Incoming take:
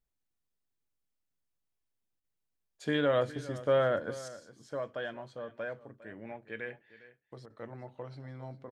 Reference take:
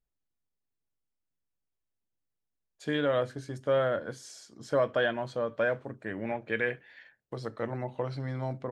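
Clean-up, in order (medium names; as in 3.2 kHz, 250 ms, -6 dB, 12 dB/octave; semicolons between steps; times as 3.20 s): interpolate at 2.20/7.46 s, 40 ms; inverse comb 406 ms -17 dB; trim 0 dB, from 4.28 s +10.5 dB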